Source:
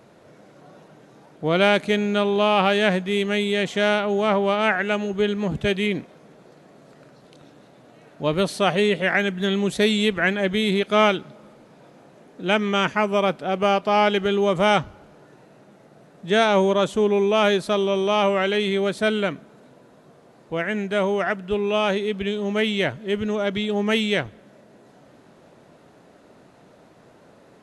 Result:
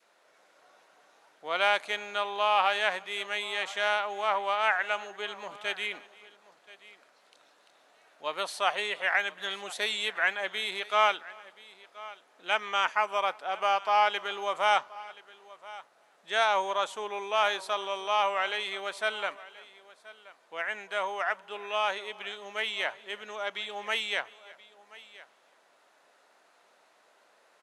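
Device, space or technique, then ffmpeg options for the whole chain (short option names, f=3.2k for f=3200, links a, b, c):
ducked delay: -filter_complex "[0:a]asplit=3[a][b][c];[b]adelay=343,volume=-4dB[d];[c]apad=whole_len=1233439[e];[d][e]sidechaincompress=threshold=-39dB:ratio=8:attack=16:release=1250[f];[a][f]amix=inputs=2:normalize=0,highpass=940,adynamicequalizer=threshold=0.0112:dfrequency=890:dqfactor=1.2:tfrequency=890:tqfactor=1.2:attack=5:release=100:ratio=0.375:range=3.5:mode=boostabove:tftype=bell,aecho=1:1:1028:0.106,volume=-6dB"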